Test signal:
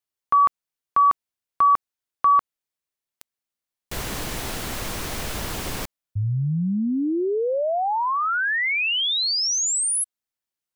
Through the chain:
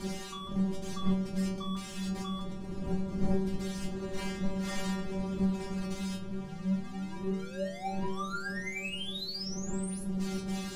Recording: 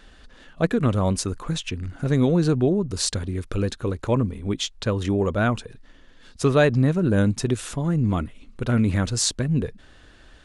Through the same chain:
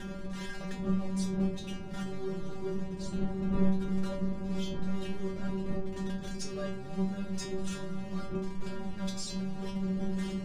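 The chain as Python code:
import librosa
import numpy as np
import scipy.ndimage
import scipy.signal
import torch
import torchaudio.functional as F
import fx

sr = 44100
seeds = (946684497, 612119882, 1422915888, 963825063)

p1 = x + 0.5 * 10.0 ** (-20.0 / 20.0) * np.sign(x)
p2 = fx.dmg_wind(p1, sr, seeds[0], corner_hz=220.0, level_db=-15.0)
p3 = fx.over_compress(p2, sr, threshold_db=-22.0, ratio=-0.5)
p4 = p2 + F.gain(torch.from_numpy(p3), 0.0).numpy()
p5 = fx.backlash(p4, sr, play_db=-15.0)
p6 = scipy.signal.sosfilt(scipy.signal.butter(2, 8000.0, 'lowpass', fs=sr, output='sos'), p5)
p7 = fx.stiff_resonator(p6, sr, f0_hz=190.0, decay_s=0.54, stiffness=0.002)
p8 = fx.echo_wet_lowpass(p7, sr, ms=304, feedback_pct=78, hz=470.0, wet_db=-9.0)
y = F.gain(torch.from_numpy(p8), -6.5).numpy()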